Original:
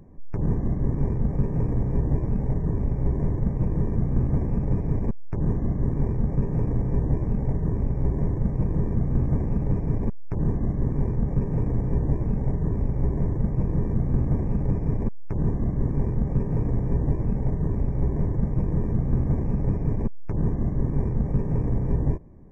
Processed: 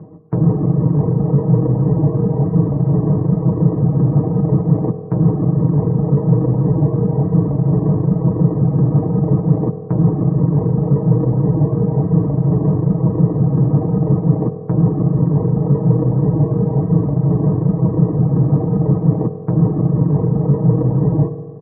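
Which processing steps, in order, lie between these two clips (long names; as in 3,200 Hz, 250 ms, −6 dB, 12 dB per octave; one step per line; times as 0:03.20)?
low-pass filter 1,200 Hz 24 dB per octave
reverb reduction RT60 0.72 s
high-pass filter 83 Hz 24 dB per octave
comb filter 6.6 ms, depth 84%
in parallel at +2 dB: brickwall limiter −21.5 dBFS, peak gain reduction 10 dB
on the sum: wrong playback speed 24 fps film run at 25 fps
on a send at −8 dB: convolution reverb RT60 1.8 s, pre-delay 3 ms
on the sum: level +4.5 dB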